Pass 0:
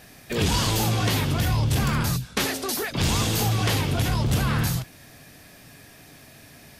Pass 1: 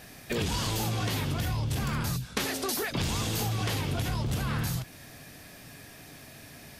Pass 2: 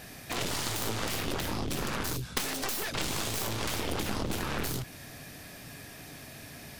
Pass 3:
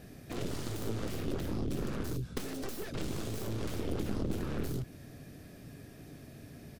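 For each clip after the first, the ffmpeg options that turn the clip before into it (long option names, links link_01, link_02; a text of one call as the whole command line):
ffmpeg -i in.wav -af "acompressor=threshold=-27dB:ratio=6" out.wav
ffmpeg -i in.wav -af "aeval=exprs='0.178*(cos(1*acos(clip(val(0)/0.178,-1,1)))-cos(1*PI/2))+0.0178*(cos(3*acos(clip(val(0)/0.178,-1,1)))-cos(3*PI/2))+0.02*(cos(6*acos(clip(val(0)/0.178,-1,1)))-cos(6*PI/2))+0.0501*(cos(7*acos(clip(val(0)/0.178,-1,1)))-cos(7*PI/2))':channel_layout=same" out.wav
ffmpeg -i in.wav -af "firequalizer=gain_entry='entry(390,0);entry(890,-13);entry(1300,-10);entry(2000,-13)':delay=0.05:min_phase=1" out.wav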